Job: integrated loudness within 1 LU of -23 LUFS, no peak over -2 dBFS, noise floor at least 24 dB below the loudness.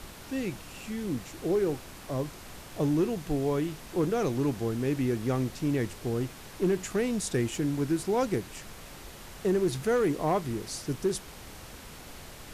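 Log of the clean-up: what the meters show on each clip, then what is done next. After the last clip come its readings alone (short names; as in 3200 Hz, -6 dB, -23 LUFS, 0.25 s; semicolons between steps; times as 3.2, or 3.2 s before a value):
clipped 0.5%; flat tops at -19.5 dBFS; noise floor -46 dBFS; noise floor target -54 dBFS; loudness -30.0 LUFS; peak -19.5 dBFS; loudness target -23.0 LUFS
-> clip repair -19.5 dBFS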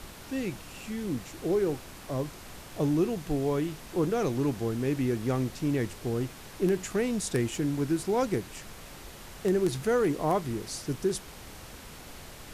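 clipped 0.0%; noise floor -46 dBFS; noise floor target -54 dBFS
-> noise print and reduce 8 dB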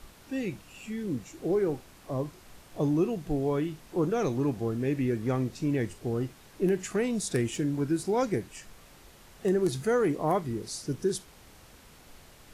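noise floor -54 dBFS; loudness -30.0 LUFS; peak -11.5 dBFS; loudness target -23.0 LUFS
-> gain +7 dB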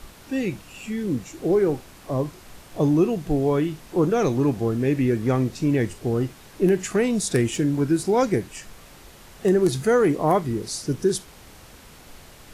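loudness -23.0 LUFS; peak -4.5 dBFS; noise floor -47 dBFS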